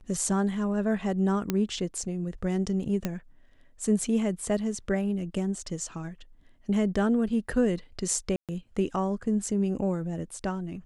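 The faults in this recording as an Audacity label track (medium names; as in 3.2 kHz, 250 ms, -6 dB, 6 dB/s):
1.500000	1.500000	pop -12 dBFS
3.050000	3.050000	pop -14 dBFS
8.360000	8.490000	dropout 127 ms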